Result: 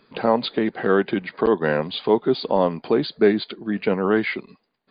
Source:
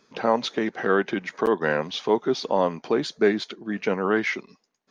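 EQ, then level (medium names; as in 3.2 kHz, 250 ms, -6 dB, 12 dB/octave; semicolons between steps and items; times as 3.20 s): bass shelf 100 Hz +8 dB; dynamic bell 1.6 kHz, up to -4 dB, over -37 dBFS, Q 0.72; brick-wall FIR low-pass 4.9 kHz; +3.5 dB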